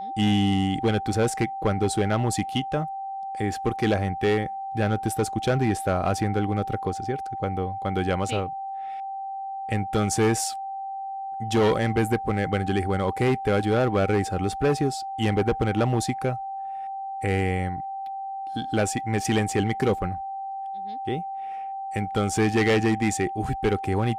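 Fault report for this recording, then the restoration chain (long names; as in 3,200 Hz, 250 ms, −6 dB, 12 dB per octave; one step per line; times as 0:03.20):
whistle 780 Hz −30 dBFS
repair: notch filter 780 Hz, Q 30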